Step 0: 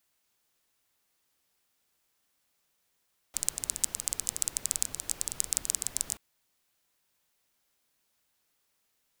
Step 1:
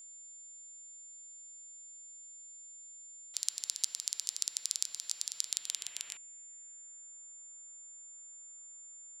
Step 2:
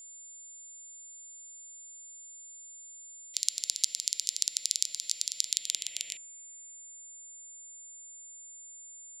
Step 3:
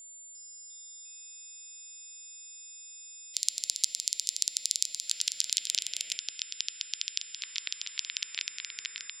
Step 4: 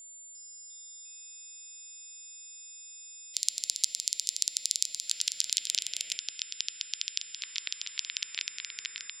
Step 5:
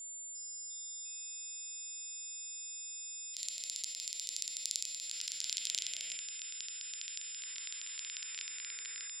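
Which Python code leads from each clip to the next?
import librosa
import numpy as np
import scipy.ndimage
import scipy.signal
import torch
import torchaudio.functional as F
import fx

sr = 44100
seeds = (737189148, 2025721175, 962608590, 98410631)

y1 = fx.filter_sweep_bandpass(x, sr, from_hz=4500.0, to_hz=1200.0, start_s=5.37, end_s=7.21, q=2.1)
y1 = y1 + 10.0 ** (-53.0 / 20.0) * np.sin(2.0 * np.pi * 7200.0 * np.arange(len(y1)) / sr)
y1 = y1 * 10.0 ** (4.0 / 20.0)
y2 = scipy.signal.sosfilt(scipy.signal.ellip(3, 1.0, 40, [660.0, 2000.0], 'bandstop', fs=sr, output='sos'), y1)
y2 = fx.dynamic_eq(y2, sr, hz=3800.0, q=0.89, threshold_db=-52.0, ratio=4.0, max_db=5)
y2 = y2 * 10.0 ** (3.0 / 20.0)
y3 = fx.echo_pitch(y2, sr, ms=351, semitones=-6, count=3, db_per_echo=-6.0)
y4 = fx.low_shelf(y3, sr, hz=76.0, db=6.5)
y5 = fx.hpss(y4, sr, part='percussive', gain_db=-18)
y5 = y5 * 10.0 ** (3.0 / 20.0)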